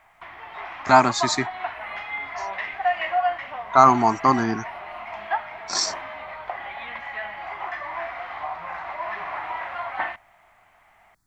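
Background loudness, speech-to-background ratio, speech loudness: -30.5 LUFS, 11.0 dB, -19.5 LUFS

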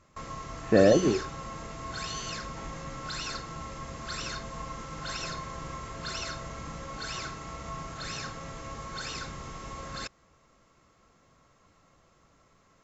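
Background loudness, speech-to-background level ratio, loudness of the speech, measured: -37.5 LUFS, 14.0 dB, -23.5 LUFS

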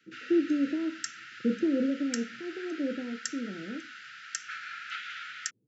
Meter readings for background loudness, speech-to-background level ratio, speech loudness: -40.5 LUFS, 9.0 dB, -31.5 LUFS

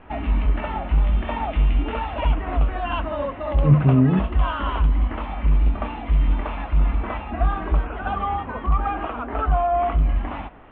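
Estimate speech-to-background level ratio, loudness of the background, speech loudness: 5.5 dB, -24.0 LUFS, -18.5 LUFS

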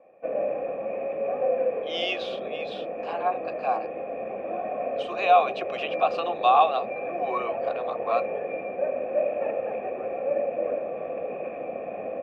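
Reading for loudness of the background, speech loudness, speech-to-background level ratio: -30.5 LUFS, -26.5 LUFS, 4.0 dB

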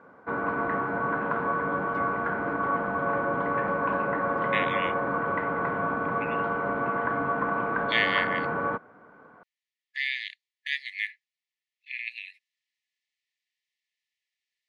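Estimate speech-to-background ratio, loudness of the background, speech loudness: -3.0 dB, -28.0 LUFS, -31.0 LUFS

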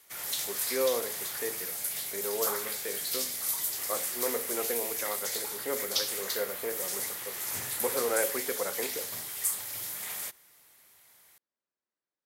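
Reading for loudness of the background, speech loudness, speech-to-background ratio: -31.5 LUFS, -36.0 LUFS, -4.5 dB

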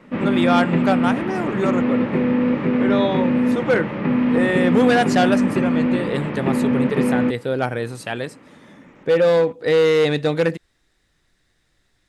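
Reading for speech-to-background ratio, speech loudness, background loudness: -1.5 dB, -21.5 LUFS, -20.0 LUFS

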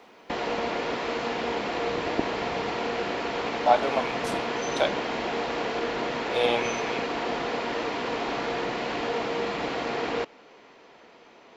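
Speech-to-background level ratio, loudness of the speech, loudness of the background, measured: 2.0 dB, -27.5 LUFS, -29.5 LUFS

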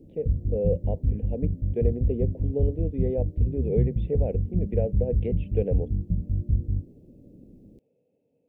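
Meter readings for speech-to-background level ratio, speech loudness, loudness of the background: -3.5 dB, -31.5 LUFS, -28.0 LUFS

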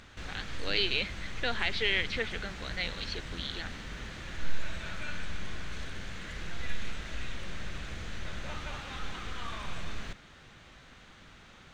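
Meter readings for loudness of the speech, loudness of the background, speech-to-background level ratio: -33.0 LUFS, -41.5 LUFS, 8.5 dB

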